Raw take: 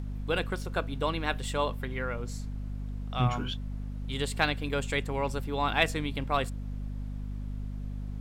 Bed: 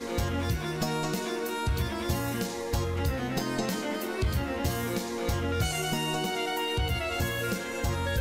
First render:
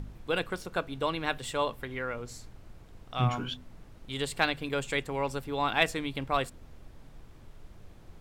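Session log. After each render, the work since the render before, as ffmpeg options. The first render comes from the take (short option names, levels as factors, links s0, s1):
-af "bandreject=f=50:t=h:w=4,bandreject=f=100:t=h:w=4,bandreject=f=150:t=h:w=4,bandreject=f=200:t=h:w=4,bandreject=f=250:t=h:w=4"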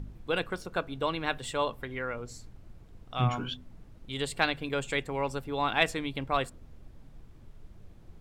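-af "afftdn=nr=6:nf=-52"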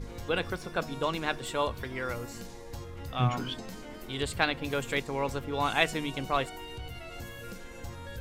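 -filter_complex "[1:a]volume=0.224[s0];[0:a][s0]amix=inputs=2:normalize=0"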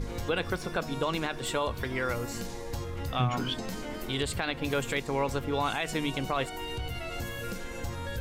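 -filter_complex "[0:a]asplit=2[s0][s1];[s1]acompressor=threshold=0.0126:ratio=6,volume=1.19[s2];[s0][s2]amix=inputs=2:normalize=0,alimiter=limit=0.119:level=0:latency=1:release=74"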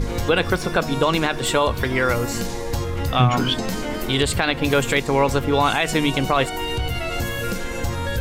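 -af "volume=3.55"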